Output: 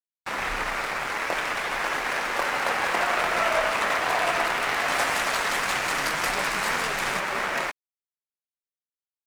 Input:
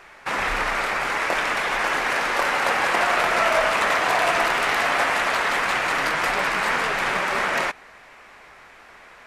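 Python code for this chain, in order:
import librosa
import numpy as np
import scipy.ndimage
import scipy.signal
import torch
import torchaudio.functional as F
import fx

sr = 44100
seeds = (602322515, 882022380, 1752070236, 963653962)

y = fx.bass_treble(x, sr, bass_db=3, treble_db=8, at=(4.88, 7.2))
y = np.sign(y) * np.maximum(np.abs(y) - 10.0 ** (-34.5 / 20.0), 0.0)
y = y * 10.0 ** (-2.5 / 20.0)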